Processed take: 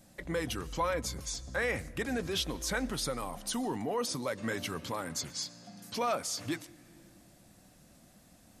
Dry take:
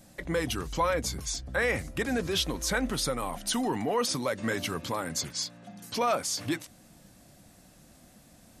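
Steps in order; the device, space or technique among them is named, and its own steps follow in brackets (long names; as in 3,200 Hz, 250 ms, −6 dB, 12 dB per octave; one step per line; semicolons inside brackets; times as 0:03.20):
compressed reverb return (on a send at −6.5 dB: convolution reverb RT60 1.2 s, pre-delay 107 ms + downward compressor 10 to 1, threshold −42 dBFS, peak gain reduction 19.5 dB)
0:03.23–0:04.27: on the sum: dynamic equaliser 2,200 Hz, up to −4 dB, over −43 dBFS, Q 0.71
level −4.5 dB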